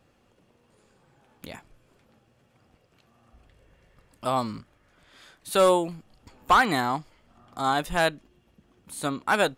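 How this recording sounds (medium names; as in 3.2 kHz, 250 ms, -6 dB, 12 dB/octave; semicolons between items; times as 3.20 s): noise floor -65 dBFS; spectral tilt -4.0 dB/octave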